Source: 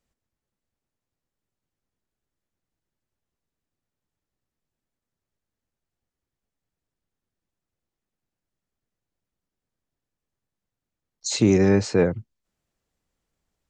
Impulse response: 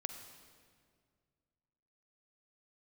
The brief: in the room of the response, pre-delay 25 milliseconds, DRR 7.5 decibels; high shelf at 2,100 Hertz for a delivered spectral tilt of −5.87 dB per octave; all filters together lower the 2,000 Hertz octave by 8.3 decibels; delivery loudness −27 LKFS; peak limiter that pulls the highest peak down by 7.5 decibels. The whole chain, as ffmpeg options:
-filter_complex "[0:a]equalizer=frequency=2000:width_type=o:gain=-8,highshelf=frequency=2100:gain=-4.5,alimiter=limit=-14.5dB:level=0:latency=1,asplit=2[link_01][link_02];[1:a]atrim=start_sample=2205,adelay=25[link_03];[link_02][link_03]afir=irnorm=-1:irlink=0,volume=-6.5dB[link_04];[link_01][link_04]amix=inputs=2:normalize=0,volume=-1.5dB"

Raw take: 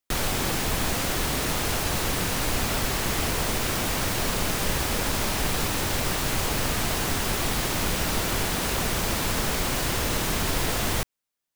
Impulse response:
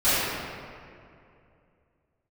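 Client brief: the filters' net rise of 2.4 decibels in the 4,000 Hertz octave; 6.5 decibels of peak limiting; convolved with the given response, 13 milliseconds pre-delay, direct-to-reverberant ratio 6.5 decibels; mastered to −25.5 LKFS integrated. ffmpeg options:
-filter_complex "[0:a]equalizer=frequency=4000:width_type=o:gain=3,alimiter=limit=-18dB:level=0:latency=1,asplit=2[link_01][link_02];[1:a]atrim=start_sample=2205,adelay=13[link_03];[link_02][link_03]afir=irnorm=-1:irlink=0,volume=-25.5dB[link_04];[link_01][link_04]amix=inputs=2:normalize=0,volume=1dB"

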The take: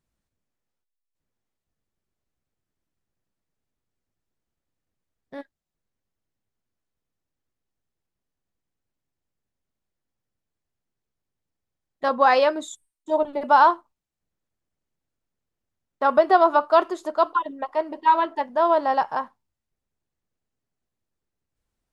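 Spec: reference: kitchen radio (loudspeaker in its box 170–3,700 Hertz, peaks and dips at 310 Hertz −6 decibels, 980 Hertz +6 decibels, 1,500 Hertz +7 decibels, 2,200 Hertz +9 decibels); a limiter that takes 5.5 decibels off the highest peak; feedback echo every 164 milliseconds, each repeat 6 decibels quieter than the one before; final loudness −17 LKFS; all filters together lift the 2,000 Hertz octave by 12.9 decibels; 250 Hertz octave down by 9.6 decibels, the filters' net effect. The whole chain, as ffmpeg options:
ffmpeg -i in.wav -af "equalizer=frequency=250:width_type=o:gain=-8.5,equalizer=frequency=2000:width_type=o:gain=8.5,alimiter=limit=-9dB:level=0:latency=1,highpass=170,equalizer=frequency=310:width_type=q:width=4:gain=-6,equalizer=frequency=980:width_type=q:width=4:gain=6,equalizer=frequency=1500:width_type=q:width=4:gain=7,equalizer=frequency=2200:width_type=q:width=4:gain=9,lowpass=frequency=3700:width=0.5412,lowpass=frequency=3700:width=1.3066,aecho=1:1:164|328|492|656|820|984:0.501|0.251|0.125|0.0626|0.0313|0.0157" out.wav

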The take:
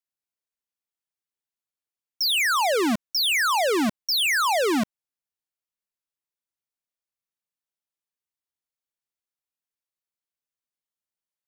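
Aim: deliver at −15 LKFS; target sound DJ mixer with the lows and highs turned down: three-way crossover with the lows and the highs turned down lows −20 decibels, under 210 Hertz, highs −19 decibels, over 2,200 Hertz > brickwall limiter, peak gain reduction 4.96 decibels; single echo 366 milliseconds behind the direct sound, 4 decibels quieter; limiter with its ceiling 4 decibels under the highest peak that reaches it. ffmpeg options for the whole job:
ffmpeg -i in.wav -filter_complex "[0:a]alimiter=level_in=1.5dB:limit=-24dB:level=0:latency=1,volume=-1.5dB,acrossover=split=210 2200:gain=0.1 1 0.112[link_01][link_02][link_03];[link_01][link_02][link_03]amix=inputs=3:normalize=0,aecho=1:1:366:0.631,volume=15dB,alimiter=limit=-8.5dB:level=0:latency=1" out.wav

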